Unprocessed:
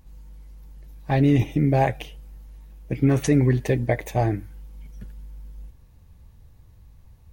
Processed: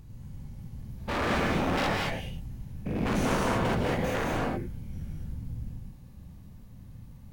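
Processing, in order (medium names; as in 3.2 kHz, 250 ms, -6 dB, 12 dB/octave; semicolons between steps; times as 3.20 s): spectrogram pixelated in time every 100 ms; 1.27–3.10 s: comb 5 ms, depth 35%; whisper effect; wavefolder -25 dBFS; harmonic-percussive split percussive -8 dB; gated-style reverb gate 250 ms rising, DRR -0.5 dB; trim +3.5 dB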